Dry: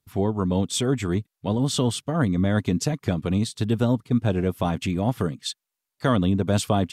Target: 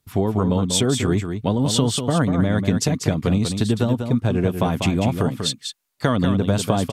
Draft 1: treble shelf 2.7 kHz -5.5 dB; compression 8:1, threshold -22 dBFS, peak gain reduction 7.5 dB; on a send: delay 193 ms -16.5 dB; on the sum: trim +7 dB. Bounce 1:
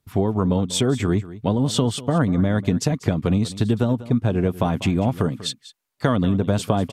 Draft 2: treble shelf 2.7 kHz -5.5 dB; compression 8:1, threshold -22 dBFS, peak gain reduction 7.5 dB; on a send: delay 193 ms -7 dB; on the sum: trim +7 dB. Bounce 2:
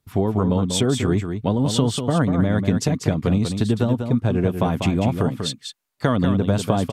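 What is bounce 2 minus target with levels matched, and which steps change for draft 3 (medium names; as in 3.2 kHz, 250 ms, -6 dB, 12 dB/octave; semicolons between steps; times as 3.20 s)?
4 kHz band -3.0 dB
remove: treble shelf 2.7 kHz -5.5 dB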